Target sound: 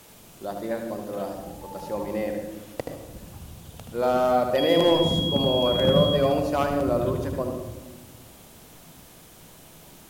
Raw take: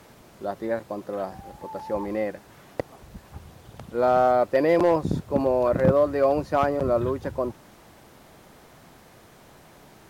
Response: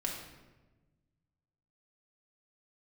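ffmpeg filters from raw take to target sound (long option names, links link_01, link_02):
-filter_complex "[0:a]aexciter=amount=1.5:drive=8.4:freq=2600,asettb=1/sr,asplit=3[link_01][link_02][link_03];[link_01]atrim=end=4.584[link_04];[link_02]atrim=start=4.58:end=6.16,asetpts=PTS-STARTPTS,afade=type=in:duration=0.004:curve=qsin,afade=type=out:start_time=1.576:duration=0.004:curve=qsin,aeval=exprs='val(0)+0.0501*sin(2*PI*3300*n/s)':channel_layout=same[link_05];[link_03]atrim=start=6.156[link_06];[link_04][link_05]acrossfade=duration=0.004:curve1=hsin:curve2=qsin[link_07];[link_07][link_06]acrossfade=duration=0.004:curve1=qsin:curve2=hsin,asplit=2[link_08][link_09];[1:a]atrim=start_sample=2205,lowshelf=frequency=410:gain=8,adelay=76[link_10];[link_09][link_10]afir=irnorm=-1:irlink=0,volume=-8dB[link_11];[link_08][link_11]amix=inputs=2:normalize=0,volume=-3dB"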